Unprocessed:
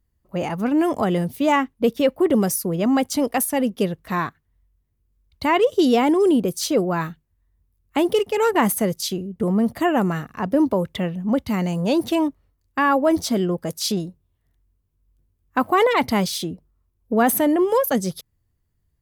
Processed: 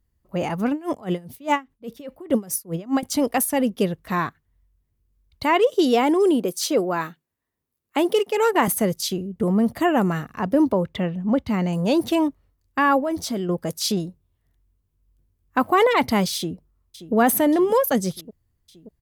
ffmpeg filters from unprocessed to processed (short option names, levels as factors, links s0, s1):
-filter_complex "[0:a]asettb=1/sr,asplit=3[s0][s1][s2];[s0]atrim=end=0.714[s3];[s1]atrim=start=0.71:end=3.03,asetpts=PTS-STARTPTS,afade=t=in:d=0.004:c=qsin,afade=t=out:st=2.316:d=0.004:c=qsin,aeval=exprs='val(0)*pow(10,-23*(0.5-0.5*cos(2*PI*4.9*n/s))/20)':c=same[s4];[s2]atrim=start=3.026[s5];[s3][s4]acrossfade=d=0.004:c1=hsin:c2=qsin[s6];[s6][s5]acrossfade=d=0.004:c1=qsin:c2=hsin,asettb=1/sr,asplit=3[s7][s8][s9];[s7]atrim=end=5.434[s10];[s8]atrim=start=5.43:end=8.68,asetpts=PTS-STARTPTS,afade=t=in:d=0.004:c=qsin,afade=t=out:st=3.246:d=0.004:c=qsin,highpass=260[s11];[s9]atrim=start=8.676[s12];[s10][s11]acrossfade=d=0.004:c1=hsin:c2=qsin[s13];[s13][s12]acrossfade=d=0.004:c1=qsin:c2=hsin,asettb=1/sr,asplit=3[s14][s15][s16];[s14]atrim=end=10.724[s17];[s15]atrim=start=10.72:end=11.73,asetpts=PTS-STARTPTS,afade=t=in:d=0.004:c=qsin,afade=t=out:st=1.006:d=0.004:c=qsin,equalizer=f=13000:w=0.38:g=-11[s18];[s16]atrim=start=11.726[s19];[s17][s18]acrossfade=d=0.004:c1=hsin:c2=qsin[s20];[s20][s19]acrossfade=d=0.004:c1=qsin:c2=hsin,asettb=1/sr,asplit=3[s21][s22][s23];[s21]atrim=end=13.004[s24];[s22]atrim=start=13:end=13.49,asetpts=PTS-STARTPTS,afade=t=in:d=0.004:c=qsin,afade=t=out:st=0.486:d=0.004:c=qsin,acompressor=threshold=0.0447:ratio=2:attack=3.2:release=140:knee=1:detection=peak[s25];[s23]atrim=start=13.486[s26];[s24][s25]acrossfade=d=0.004:c1=hsin:c2=qsin[s27];[s27][s26]acrossfade=d=0.004:c1=qsin:c2=hsin,asplit=2[s28][s29];[s29]afade=t=in:st=16.36:d=0.01,afade=t=out:st=17.14:d=0.01,aecho=0:1:580|1160|1740|2320|2900|3480|4060|4640|5220:0.211349|0.147944|0.103561|0.0724927|0.0507449|0.0355214|0.024865|0.0174055|0.0121838[s30];[s28][s30]amix=inputs=2:normalize=0"